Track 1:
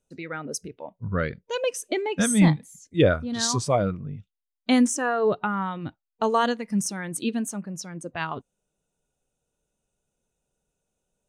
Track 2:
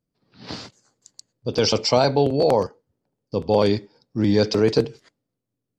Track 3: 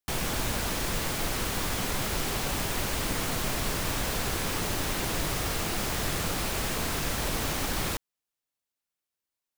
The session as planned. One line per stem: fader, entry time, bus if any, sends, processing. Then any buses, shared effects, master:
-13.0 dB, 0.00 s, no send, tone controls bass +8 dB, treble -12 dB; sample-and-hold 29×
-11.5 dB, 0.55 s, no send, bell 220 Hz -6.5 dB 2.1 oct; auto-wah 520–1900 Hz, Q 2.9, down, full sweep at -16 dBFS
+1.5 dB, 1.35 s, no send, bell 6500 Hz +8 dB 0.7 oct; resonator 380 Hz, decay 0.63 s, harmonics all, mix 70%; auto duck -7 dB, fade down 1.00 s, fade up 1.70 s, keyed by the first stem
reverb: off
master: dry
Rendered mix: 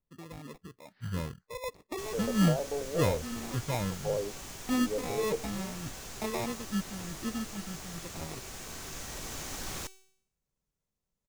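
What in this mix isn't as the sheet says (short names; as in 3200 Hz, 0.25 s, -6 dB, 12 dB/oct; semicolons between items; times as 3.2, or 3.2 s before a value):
stem 2: missing bell 220 Hz -6.5 dB 2.1 oct; stem 3: entry 1.35 s -> 1.90 s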